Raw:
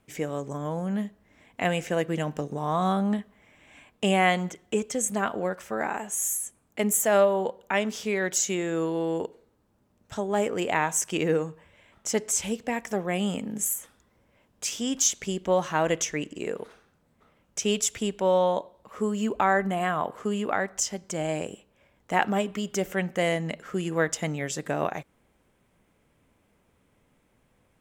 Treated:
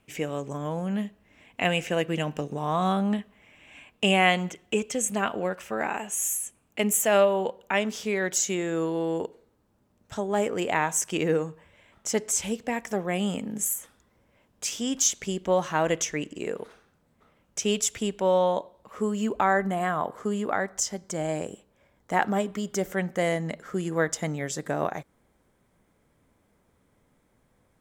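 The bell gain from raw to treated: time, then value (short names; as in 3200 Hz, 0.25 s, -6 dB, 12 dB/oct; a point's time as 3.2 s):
bell 2700 Hz 0.42 oct
7.42 s +8 dB
7.98 s -0.5 dB
19.13 s -0.5 dB
19.87 s -7.5 dB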